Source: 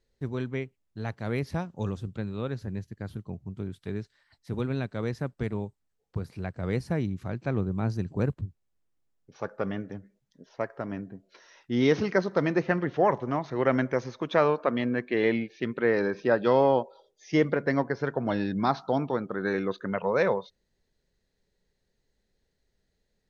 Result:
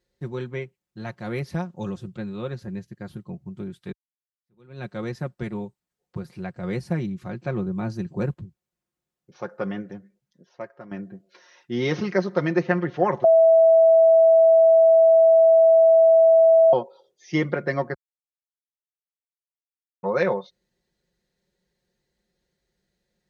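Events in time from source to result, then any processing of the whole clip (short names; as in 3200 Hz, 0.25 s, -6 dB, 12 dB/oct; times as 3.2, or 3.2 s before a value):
3.92–4.85 fade in exponential
9.82–10.91 fade out, to -11 dB
13.24–16.73 bleep 654 Hz -9 dBFS
17.94–20.03 mute
whole clip: HPF 57 Hz; comb 5.6 ms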